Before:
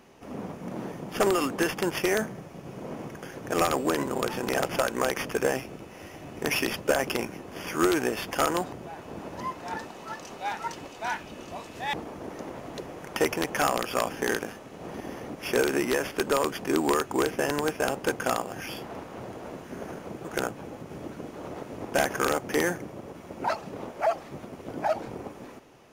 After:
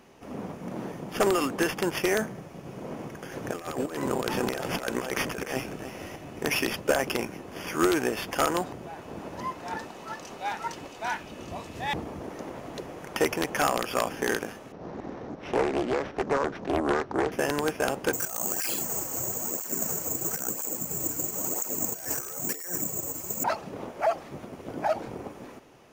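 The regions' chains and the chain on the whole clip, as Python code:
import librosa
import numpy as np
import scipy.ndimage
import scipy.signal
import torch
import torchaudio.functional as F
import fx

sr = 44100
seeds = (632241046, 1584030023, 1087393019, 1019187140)

y = fx.chain(x, sr, fx.over_compress(threshold_db=-30.0, ratio=-0.5),
    fx.echo_single(ms=299, db=-10.0), at=(3.31, 6.16))
y = fx.chain(y, sr, fx.highpass(hz=55.0, slope=12),
    fx.low_shelf(hz=130.0, db=12.0),
    fx.notch(hz=1500.0, q=26.0), at=(11.4, 12.22))
y = fx.chain(y, sr, fx.sample_sort(block=8),
    fx.lowpass(hz=2000.0, slope=12),
    fx.doppler_dist(depth_ms=0.69), at=(14.72, 17.32))
y = fx.chain(y, sr, fx.over_compress(threshold_db=-35.0, ratio=-1.0),
    fx.resample_bad(factor=6, down='filtered', up='zero_stuff'),
    fx.flanger_cancel(hz=1.0, depth_ms=5.5), at=(18.13, 23.44))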